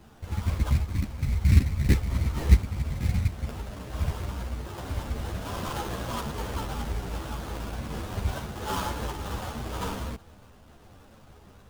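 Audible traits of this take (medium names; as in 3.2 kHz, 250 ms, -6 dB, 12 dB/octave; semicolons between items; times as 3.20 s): aliases and images of a low sample rate 2.2 kHz, jitter 20%; a shimmering, thickened sound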